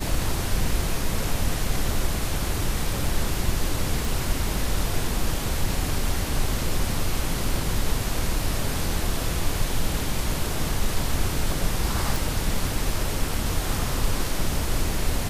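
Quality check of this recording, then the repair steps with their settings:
0:04.05: click
0:12.16: click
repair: click removal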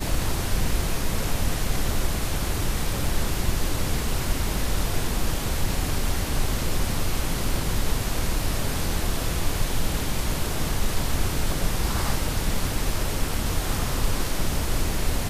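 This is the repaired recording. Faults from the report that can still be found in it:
none of them is left

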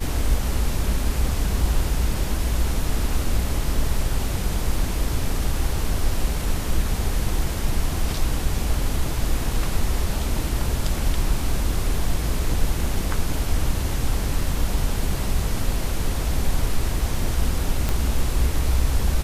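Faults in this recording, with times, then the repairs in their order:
0:17.89: click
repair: click removal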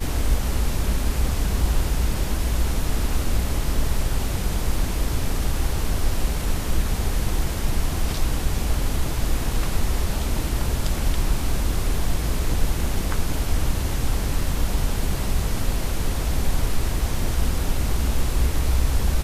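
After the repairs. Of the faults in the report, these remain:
none of them is left

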